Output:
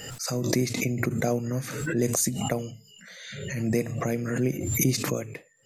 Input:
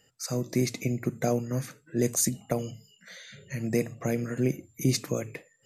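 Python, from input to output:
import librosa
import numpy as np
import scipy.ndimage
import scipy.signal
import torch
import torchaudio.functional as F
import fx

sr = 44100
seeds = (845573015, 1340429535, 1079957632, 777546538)

y = fx.pre_swell(x, sr, db_per_s=41.0)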